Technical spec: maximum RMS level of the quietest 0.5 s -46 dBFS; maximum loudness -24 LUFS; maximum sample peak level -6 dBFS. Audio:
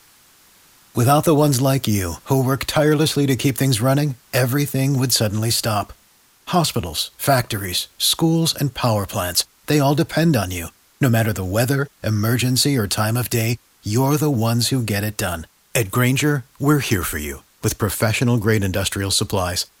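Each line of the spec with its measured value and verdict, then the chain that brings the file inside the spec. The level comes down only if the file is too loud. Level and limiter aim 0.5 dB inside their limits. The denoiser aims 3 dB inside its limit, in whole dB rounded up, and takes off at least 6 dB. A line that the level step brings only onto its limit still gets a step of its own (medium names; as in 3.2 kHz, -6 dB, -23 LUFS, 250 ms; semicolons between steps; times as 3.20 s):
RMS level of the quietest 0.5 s -55 dBFS: pass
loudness -19.0 LUFS: fail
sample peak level -4.0 dBFS: fail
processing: trim -5.5 dB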